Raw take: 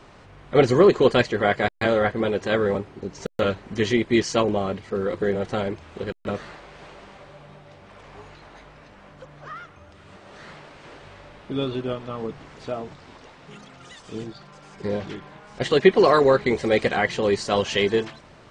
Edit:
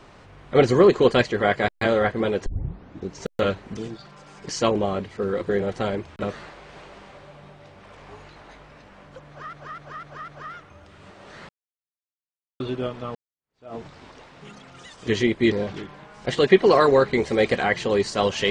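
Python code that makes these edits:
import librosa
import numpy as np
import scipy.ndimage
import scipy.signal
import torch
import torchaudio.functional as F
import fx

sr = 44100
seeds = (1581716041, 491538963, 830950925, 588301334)

y = fx.edit(x, sr, fx.tape_start(start_s=2.46, length_s=0.62),
    fx.swap(start_s=3.77, length_s=0.45, other_s=14.13, other_length_s=0.72),
    fx.cut(start_s=5.89, length_s=0.33),
    fx.repeat(start_s=9.34, length_s=0.25, count=5),
    fx.silence(start_s=10.55, length_s=1.11),
    fx.fade_in_span(start_s=12.21, length_s=0.6, curve='exp'), tone=tone)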